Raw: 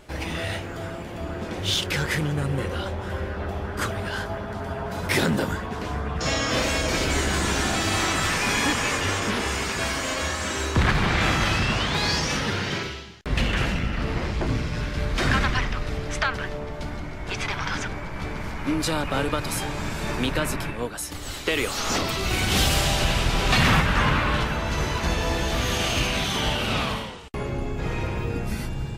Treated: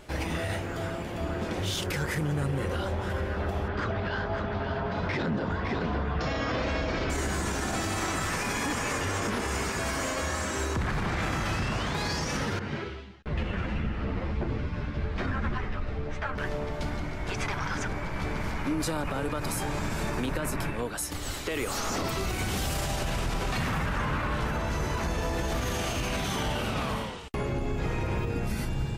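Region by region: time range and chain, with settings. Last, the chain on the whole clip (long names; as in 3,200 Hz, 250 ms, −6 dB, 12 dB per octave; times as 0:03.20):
0:03.68–0:07.10: low-pass filter 4,500 Hz 24 dB per octave + single-tap delay 556 ms −9.5 dB
0:12.59–0:16.38: variable-slope delta modulation 64 kbit/s + head-to-tape spacing loss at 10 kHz 26 dB + string-ensemble chorus
whole clip: dynamic equaliser 3,400 Hz, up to −7 dB, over −40 dBFS, Q 0.93; brickwall limiter −21 dBFS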